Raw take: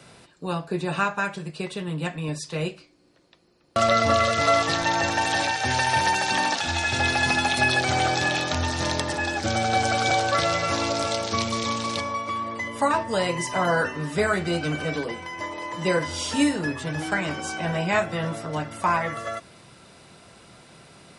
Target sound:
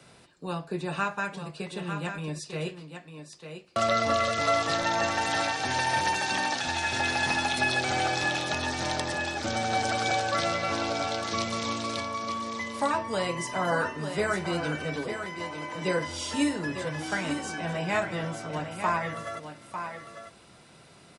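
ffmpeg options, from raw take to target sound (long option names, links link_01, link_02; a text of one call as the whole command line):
ffmpeg -i in.wav -filter_complex "[0:a]asettb=1/sr,asplit=3[link_01][link_02][link_03];[link_01]atrim=end=10.524[link_04];[link_02]atrim=start=10.52:end=11.21,asetpts=PTS-STARTPTS,afade=type=in:duration=0.004:curve=qsin,afade=type=out:start_time=0.686:duration=0.004:curve=qsin,lowpass=5200[link_05];[link_03]atrim=start=11.206[link_06];[link_04][link_05]acrossfade=duration=0.004:curve1=hsin:curve2=qsin[link_07];[link_07][link_06]acrossfade=duration=0.004:curve1=qsin:curve2=hsin,acrossover=split=130[link_08][link_09];[link_08]asoftclip=type=hard:threshold=-39dB[link_10];[link_09]aecho=1:1:899:0.398[link_11];[link_10][link_11]amix=inputs=2:normalize=0,volume=-5dB" out.wav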